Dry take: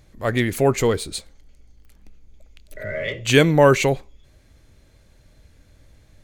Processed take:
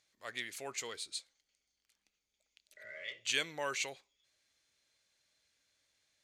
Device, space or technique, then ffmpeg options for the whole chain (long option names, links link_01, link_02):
piezo pickup straight into a mixer: -af "lowpass=5400,aderivative,volume=-4dB"